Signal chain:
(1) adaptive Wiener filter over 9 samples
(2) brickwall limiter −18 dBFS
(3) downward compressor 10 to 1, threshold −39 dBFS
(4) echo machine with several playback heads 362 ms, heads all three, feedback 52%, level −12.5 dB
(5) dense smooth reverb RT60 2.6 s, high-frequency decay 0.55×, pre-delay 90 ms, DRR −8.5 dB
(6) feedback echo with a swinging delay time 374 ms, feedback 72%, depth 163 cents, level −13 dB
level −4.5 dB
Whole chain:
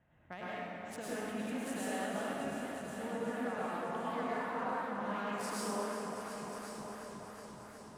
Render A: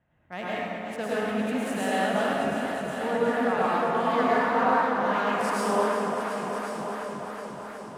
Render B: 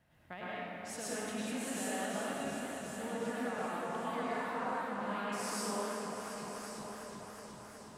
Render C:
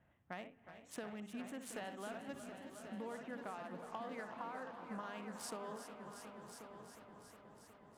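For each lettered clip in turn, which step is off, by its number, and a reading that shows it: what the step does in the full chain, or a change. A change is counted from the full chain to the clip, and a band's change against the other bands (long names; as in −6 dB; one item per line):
3, change in momentary loudness spread +2 LU
1, 8 kHz band +5.0 dB
5, change in crest factor +3.5 dB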